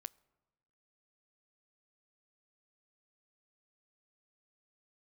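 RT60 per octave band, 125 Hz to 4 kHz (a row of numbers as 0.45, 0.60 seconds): 1.3, 1.3, 1.1, 1.1, 1.0, 0.75 seconds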